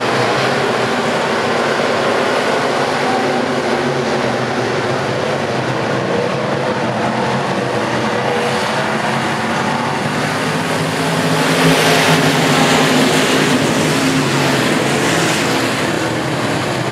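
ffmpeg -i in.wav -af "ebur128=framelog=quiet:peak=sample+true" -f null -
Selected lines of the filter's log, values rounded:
Integrated loudness:
  I:         -14.9 LUFS
  Threshold: -24.9 LUFS
Loudness range:
  LRA:         4.8 LU
  Threshold: -34.8 LUFS
  LRA low:   -17.0 LUFS
  LRA high:  -12.2 LUFS
Sample peak:
  Peak:       -1.4 dBFS
True peak:
  Peak:       -1.2 dBFS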